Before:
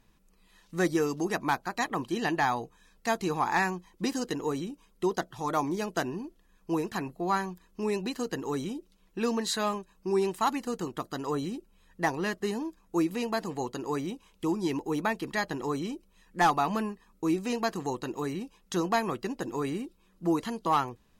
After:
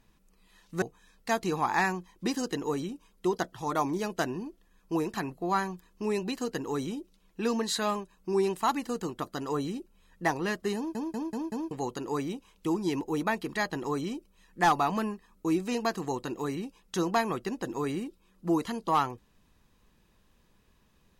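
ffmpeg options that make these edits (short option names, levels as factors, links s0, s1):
-filter_complex "[0:a]asplit=7[s0][s1][s2][s3][s4][s5][s6];[s0]atrim=end=0.822[s7];[s1]atrim=start=2.598:end=12.732[s8];[s2]atrim=start=12.538:end=12.732[s9];[s3]atrim=start=12.538:end=12.732[s10];[s4]atrim=start=12.538:end=12.732[s11];[s5]atrim=start=12.538:end=12.732[s12];[s6]atrim=start=13.488[s13];[s7][s8]acrossfade=d=0.004:c1=hsin:c2=hsin[s14];[s14][s9]acrossfade=d=0.004:c1=hsin:c2=hsin[s15];[s15][s10]acrossfade=d=0.004:c1=hsin:c2=hsin[s16];[s16][s11]acrossfade=d=0.004:c1=hsin:c2=hsin[s17];[s17][s12]acrossfade=d=0.004:c1=hsin:c2=hsin[s18];[s18][s13]acrossfade=d=0.004:c1=hsin:c2=hsin"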